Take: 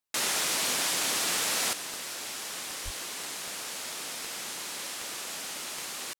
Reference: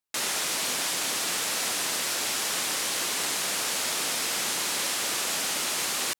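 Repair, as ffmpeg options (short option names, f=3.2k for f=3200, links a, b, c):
-filter_complex "[0:a]adeclick=t=4,asplit=3[a][b][c];[a]afade=t=out:st=2.84:d=0.02[d];[b]highpass=f=140:w=0.5412,highpass=f=140:w=1.3066,afade=t=in:st=2.84:d=0.02,afade=t=out:st=2.96:d=0.02[e];[c]afade=t=in:st=2.96:d=0.02[f];[d][e][f]amix=inputs=3:normalize=0,asetnsamples=n=441:p=0,asendcmd='1.73 volume volume 9dB',volume=0dB"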